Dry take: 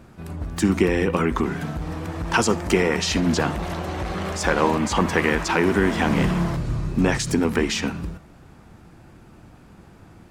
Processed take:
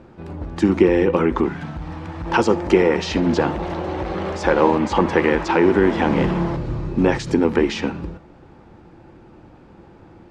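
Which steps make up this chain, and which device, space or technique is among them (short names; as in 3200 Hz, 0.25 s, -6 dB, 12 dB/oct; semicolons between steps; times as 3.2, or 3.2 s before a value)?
inside a cardboard box (LPF 4400 Hz 12 dB/oct; small resonant body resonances 350/510/840 Hz, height 8 dB, ringing for 25 ms); 1.48–2.26 bell 430 Hz -12 dB 1.1 oct; gain -1 dB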